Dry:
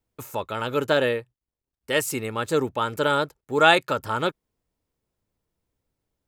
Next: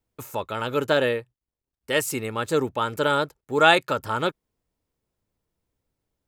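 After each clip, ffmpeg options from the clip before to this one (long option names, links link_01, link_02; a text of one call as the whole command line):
ffmpeg -i in.wav -af anull out.wav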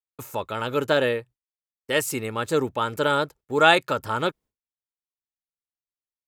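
ffmpeg -i in.wav -af "agate=range=-33dB:threshold=-44dB:ratio=3:detection=peak" out.wav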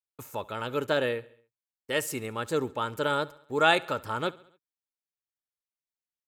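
ffmpeg -i in.wav -af "aecho=1:1:69|138|207|276:0.0794|0.0445|0.0249|0.0139,volume=-5.5dB" out.wav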